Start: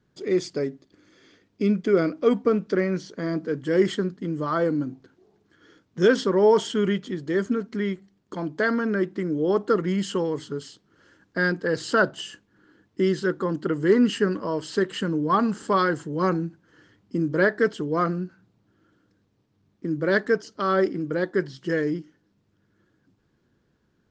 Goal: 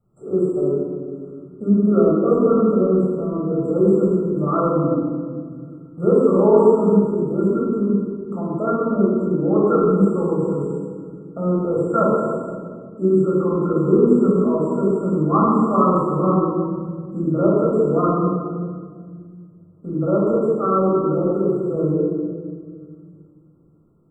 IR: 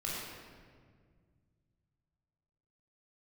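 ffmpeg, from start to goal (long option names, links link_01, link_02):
-filter_complex "[1:a]atrim=start_sample=2205[link_01];[0:a][link_01]afir=irnorm=-1:irlink=0,afftfilt=real='re*(1-between(b*sr/4096,1400,7400))':imag='im*(1-between(b*sr/4096,1400,7400))':win_size=4096:overlap=0.75,acrossover=split=3500[link_02][link_03];[link_03]acompressor=threshold=-58dB:ratio=4:attack=1:release=60[link_04];[link_02][link_04]amix=inputs=2:normalize=0,volume=1.5dB"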